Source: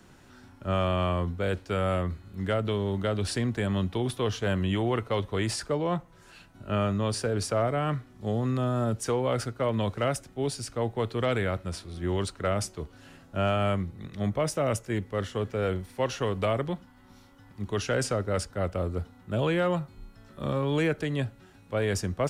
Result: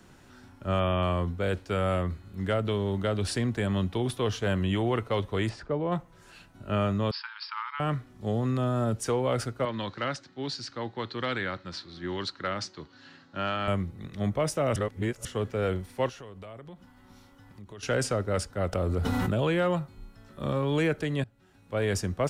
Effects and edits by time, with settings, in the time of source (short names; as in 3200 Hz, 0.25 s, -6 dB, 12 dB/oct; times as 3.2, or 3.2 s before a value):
0.8–1.03 spectral delete 3600–10000 Hz
5.49–5.92 tape spacing loss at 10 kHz 28 dB
7.11–7.8 brick-wall FIR band-pass 840–5400 Hz
9.65–13.68 speaker cabinet 180–5700 Hz, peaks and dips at 210 Hz -4 dB, 440 Hz -9 dB, 660 Hz -9 dB, 1700 Hz +4 dB, 2500 Hz -3 dB, 4200 Hz +9 dB
14.76–15.25 reverse
16.09–17.83 compressor 4:1, threshold -44 dBFS
18.73–19.34 fast leveller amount 100%
21.24–21.84 fade in, from -20.5 dB